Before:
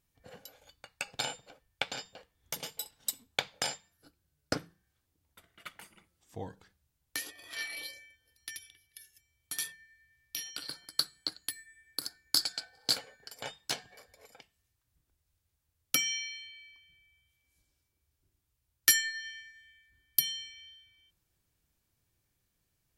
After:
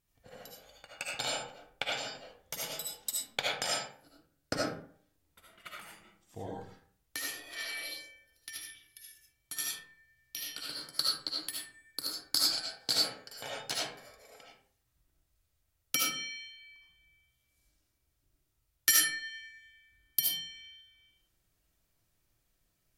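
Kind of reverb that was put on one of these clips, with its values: digital reverb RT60 0.54 s, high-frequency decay 0.55×, pre-delay 35 ms, DRR -4.5 dB; gain -3 dB

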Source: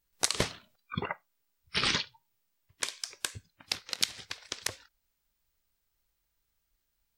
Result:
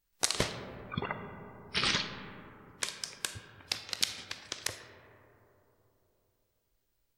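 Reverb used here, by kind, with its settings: digital reverb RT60 3.6 s, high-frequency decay 0.25×, pre-delay 0 ms, DRR 7 dB; gain -1.5 dB

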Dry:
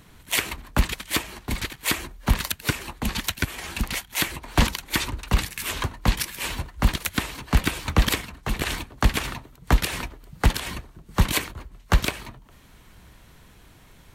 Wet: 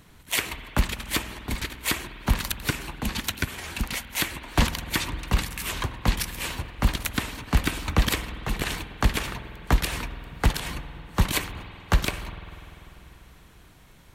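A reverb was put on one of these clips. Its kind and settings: spring tank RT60 3.5 s, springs 49 ms, chirp 60 ms, DRR 11 dB; gain -2 dB

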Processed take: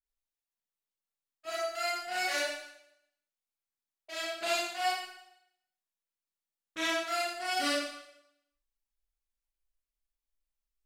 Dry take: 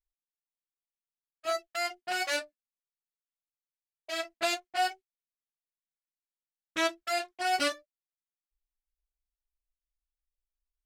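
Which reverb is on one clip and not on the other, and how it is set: Schroeder reverb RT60 0.78 s, combs from 28 ms, DRR -7.5 dB; gain -8 dB

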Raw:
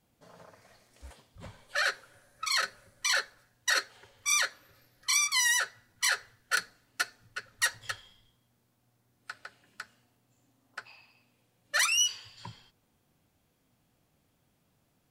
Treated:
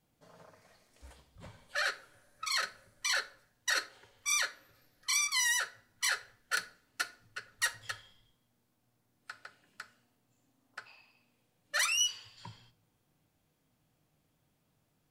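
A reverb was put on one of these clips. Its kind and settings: shoebox room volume 560 m³, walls furnished, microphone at 0.52 m; gain -4 dB

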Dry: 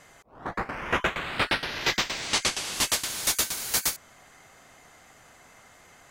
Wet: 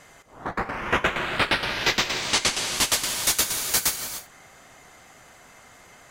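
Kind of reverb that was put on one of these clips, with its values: non-linear reverb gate 0.32 s rising, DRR 8.5 dB; gain +3 dB

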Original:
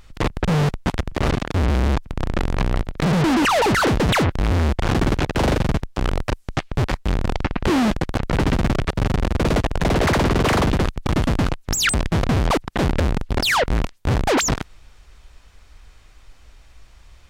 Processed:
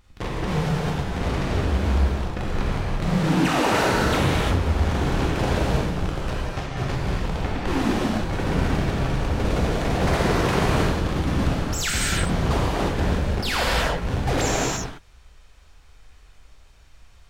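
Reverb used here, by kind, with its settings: non-linear reverb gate 0.38 s flat, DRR -7 dB; gain -10.5 dB

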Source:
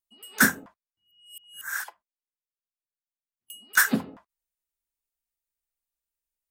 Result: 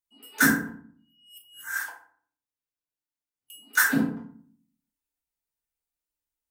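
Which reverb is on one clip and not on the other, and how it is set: FDN reverb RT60 0.51 s, low-frequency decay 1.6×, high-frequency decay 0.6×, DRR -4 dB; gain -5.5 dB

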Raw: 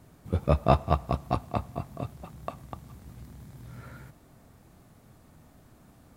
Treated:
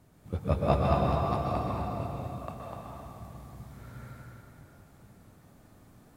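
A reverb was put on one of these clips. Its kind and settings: plate-style reverb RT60 3.1 s, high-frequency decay 0.75×, pre-delay 0.11 s, DRR -4 dB; gain -6 dB

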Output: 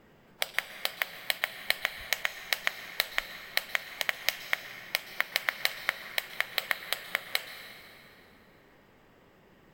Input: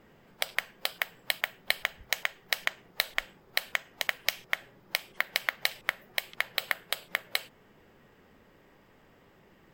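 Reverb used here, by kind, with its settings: plate-style reverb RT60 3.3 s, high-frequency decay 0.7×, pre-delay 0.11 s, DRR 10 dB

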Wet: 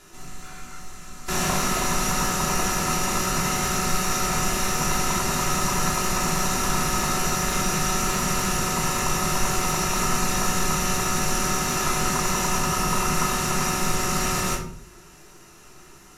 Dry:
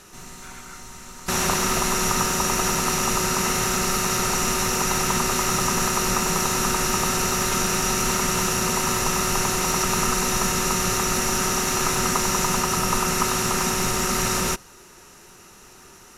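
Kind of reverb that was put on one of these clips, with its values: shoebox room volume 620 m³, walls furnished, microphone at 3.1 m; gain -6 dB

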